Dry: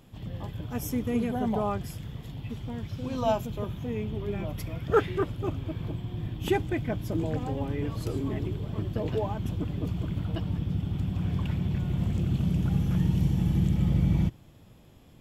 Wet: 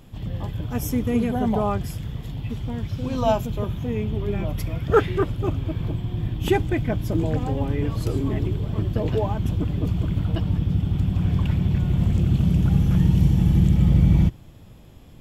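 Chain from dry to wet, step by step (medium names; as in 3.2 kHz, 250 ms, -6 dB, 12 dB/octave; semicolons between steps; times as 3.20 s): bass shelf 71 Hz +8.5 dB; trim +5 dB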